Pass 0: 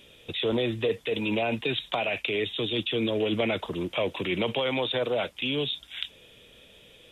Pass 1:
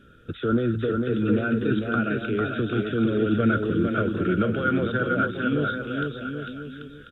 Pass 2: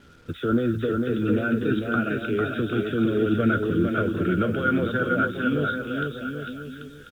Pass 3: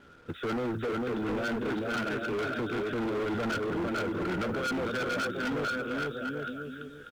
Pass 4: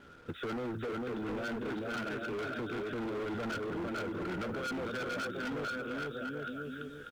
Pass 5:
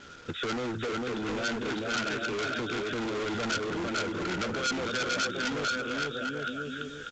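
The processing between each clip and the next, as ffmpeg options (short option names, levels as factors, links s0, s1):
-filter_complex "[0:a]firequalizer=gain_entry='entry(250,0);entry(950,-27);entry(1400,12);entry(2000,-21)':delay=0.05:min_phase=1,asplit=2[s0][s1];[s1]aecho=0:1:450|787.5|1041|1230|1373:0.631|0.398|0.251|0.158|0.1[s2];[s0][s2]amix=inputs=2:normalize=0,volume=2.37"
-filter_complex "[0:a]acrusher=bits=8:mix=0:aa=0.5,asplit=2[s0][s1];[s1]adelay=12,volume=0.266[s2];[s0][s2]amix=inputs=2:normalize=0"
-af "equalizer=f=850:w=0.33:g=10,asoftclip=type=hard:threshold=0.1,volume=0.355"
-af "acompressor=threshold=0.0158:ratio=6"
-af "crystalizer=i=5:c=0,volume=1.5" -ar 16000 -c:a pcm_mulaw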